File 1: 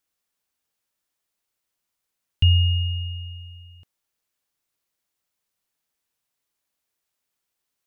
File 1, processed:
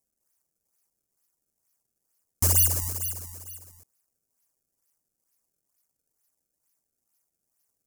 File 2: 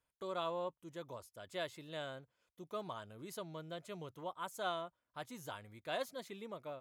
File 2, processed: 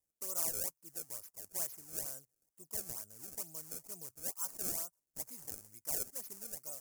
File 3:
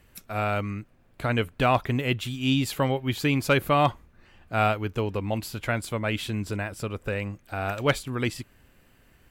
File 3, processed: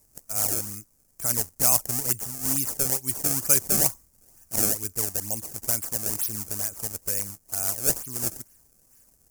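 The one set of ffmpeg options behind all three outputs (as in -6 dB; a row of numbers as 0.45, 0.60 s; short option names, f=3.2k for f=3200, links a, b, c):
-af "acrusher=samples=26:mix=1:aa=0.000001:lfo=1:lforange=41.6:lforate=2.2,aexciter=amount=10.7:drive=8.5:freq=5.5k,volume=-10dB"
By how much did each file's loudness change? -0.5, +5.0, +3.0 LU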